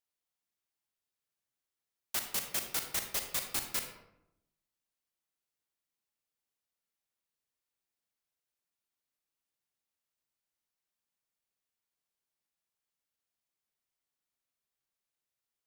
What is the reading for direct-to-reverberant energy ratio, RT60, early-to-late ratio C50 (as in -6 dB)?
5.0 dB, 0.85 s, 6.5 dB